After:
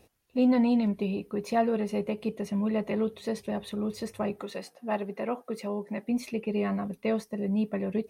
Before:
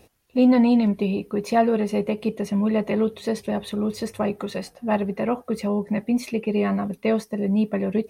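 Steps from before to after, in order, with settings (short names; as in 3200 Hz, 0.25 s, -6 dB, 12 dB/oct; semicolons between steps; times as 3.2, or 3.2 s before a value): 4.42–6.08 HPF 240 Hz 12 dB/oct; gain -6.5 dB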